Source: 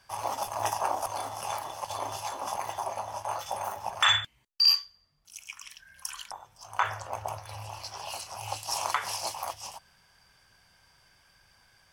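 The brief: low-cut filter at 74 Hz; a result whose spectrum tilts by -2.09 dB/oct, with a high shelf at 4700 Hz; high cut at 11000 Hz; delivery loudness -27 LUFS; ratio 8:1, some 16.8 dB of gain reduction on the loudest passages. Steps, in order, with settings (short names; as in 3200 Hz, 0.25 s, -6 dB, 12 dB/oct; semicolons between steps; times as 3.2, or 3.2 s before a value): HPF 74 Hz; LPF 11000 Hz; high shelf 4700 Hz +8 dB; compressor 8:1, threshold -31 dBFS; gain +9 dB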